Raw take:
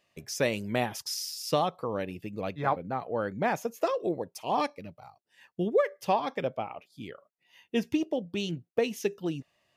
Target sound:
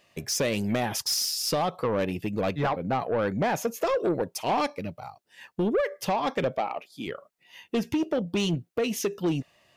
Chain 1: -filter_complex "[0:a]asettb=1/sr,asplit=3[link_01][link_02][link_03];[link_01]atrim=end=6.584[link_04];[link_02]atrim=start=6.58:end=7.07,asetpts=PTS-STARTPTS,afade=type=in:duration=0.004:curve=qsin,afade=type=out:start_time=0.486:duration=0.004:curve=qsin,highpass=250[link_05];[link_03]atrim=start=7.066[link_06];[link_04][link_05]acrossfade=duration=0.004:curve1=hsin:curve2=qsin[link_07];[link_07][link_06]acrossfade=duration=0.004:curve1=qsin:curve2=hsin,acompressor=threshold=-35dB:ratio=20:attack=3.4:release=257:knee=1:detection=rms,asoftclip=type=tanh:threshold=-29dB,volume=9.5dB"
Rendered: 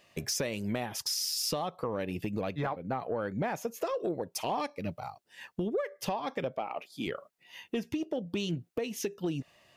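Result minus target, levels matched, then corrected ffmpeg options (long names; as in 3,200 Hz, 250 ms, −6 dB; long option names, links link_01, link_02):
downward compressor: peak gain reduction +10 dB
-filter_complex "[0:a]asettb=1/sr,asplit=3[link_01][link_02][link_03];[link_01]atrim=end=6.584[link_04];[link_02]atrim=start=6.58:end=7.07,asetpts=PTS-STARTPTS,afade=type=in:duration=0.004:curve=qsin,afade=type=out:start_time=0.486:duration=0.004:curve=qsin,highpass=250[link_05];[link_03]atrim=start=7.066[link_06];[link_04][link_05]acrossfade=duration=0.004:curve1=hsin:curve2=qsin[link_07];[link_07][link_06]acrossfade=duration=0.004:curve1=qsin:curve2=hsin,acompressor=threshold=-24.5dB:ratio=20:attack=3.4:release=257:knee=1:detection=rms,asoftclip=type=tanh:threshold=-29dB,volume=9.5dB"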